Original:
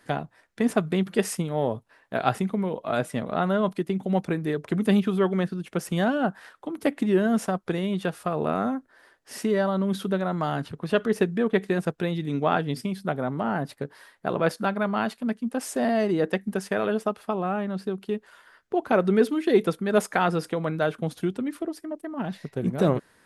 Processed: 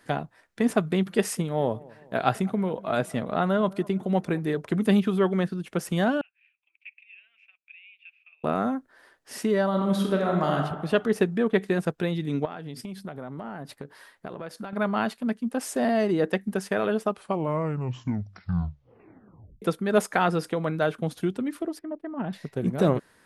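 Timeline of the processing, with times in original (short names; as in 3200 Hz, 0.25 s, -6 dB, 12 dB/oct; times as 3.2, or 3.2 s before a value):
1.01–4.62 dark delay 0.208 s, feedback 50%, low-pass 1400 Hz, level -22.5 dB
6.21–8.44 Butterworth band-pass 2500 Hz, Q 7.3
9.68–10.57 reverb throw, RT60 1.1 s, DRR 1 dB
12.45–14.73 compressor 12:1, threshold -32 dBFS
17.06 tape stop 2.56 s
21.79–22.33 air absorption 340 m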